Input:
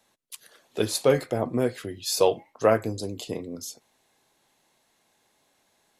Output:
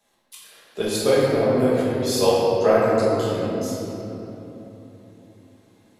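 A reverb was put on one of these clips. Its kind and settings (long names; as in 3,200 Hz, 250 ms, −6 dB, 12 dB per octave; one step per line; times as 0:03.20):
rectangular room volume 200 cubic metres, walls hard, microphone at 1.3 metres
level −4 dB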